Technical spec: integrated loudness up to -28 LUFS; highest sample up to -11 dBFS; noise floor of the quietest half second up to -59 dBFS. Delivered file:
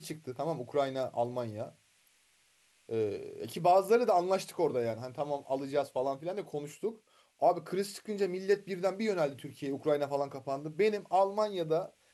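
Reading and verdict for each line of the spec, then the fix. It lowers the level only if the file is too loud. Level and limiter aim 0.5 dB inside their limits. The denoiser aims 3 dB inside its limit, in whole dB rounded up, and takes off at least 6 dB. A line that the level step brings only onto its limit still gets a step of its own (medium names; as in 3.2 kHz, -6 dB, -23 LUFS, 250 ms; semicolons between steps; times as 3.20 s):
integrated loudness -32.5 LUFS: pass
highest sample -15.0 dBFS: pass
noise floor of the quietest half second -69 dBFS: pass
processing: none needed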